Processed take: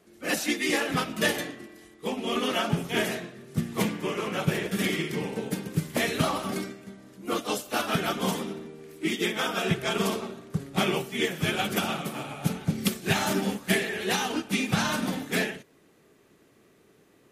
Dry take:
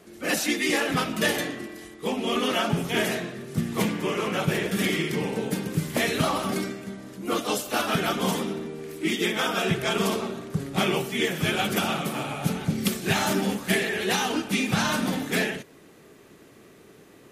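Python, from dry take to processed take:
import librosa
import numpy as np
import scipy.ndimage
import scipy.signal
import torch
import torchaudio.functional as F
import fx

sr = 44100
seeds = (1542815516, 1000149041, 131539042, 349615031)

y = fx.upward_expand(x, sr, threshold_db=-37.0, expansion=1.5)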